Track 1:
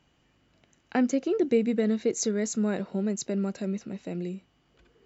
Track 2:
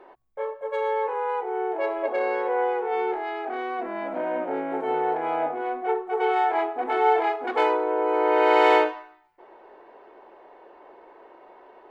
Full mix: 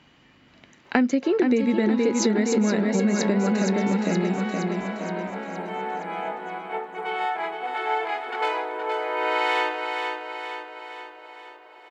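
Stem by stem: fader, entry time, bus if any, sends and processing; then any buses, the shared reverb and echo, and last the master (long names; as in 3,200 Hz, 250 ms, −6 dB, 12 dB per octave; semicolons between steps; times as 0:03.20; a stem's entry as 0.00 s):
+1.5 dB, 0.00 s, no send, echo send −5.5 dB, octave-band graphic EQ 125/250/500/1,000/2,000/4,000 Hz +5/+9/+4/+8/+10/+9 dB
−4.0 dB, 0.85 s, no send, echo send −7 dB, tilt shelving filter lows −8 dB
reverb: not used
echo: repeating echo 469 ms, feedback 55%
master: downward compressor 6 to 1, threshold −18 dBFS, peak gain reduction 10.5 dB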